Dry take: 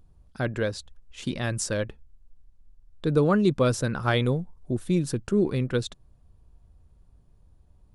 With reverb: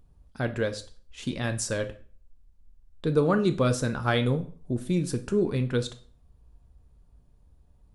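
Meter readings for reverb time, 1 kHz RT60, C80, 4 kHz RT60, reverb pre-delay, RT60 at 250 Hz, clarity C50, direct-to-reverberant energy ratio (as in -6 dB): 0.45 s, 0.45 s, 20.0 dB, 0.40 s, 3 ms, 0.45 s, 15.0 dB, 7.5 dB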